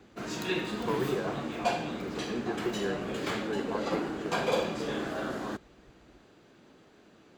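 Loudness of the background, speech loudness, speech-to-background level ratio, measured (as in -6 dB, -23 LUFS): -33.5 LUFS, -38.0 LUFS, -4.5 dB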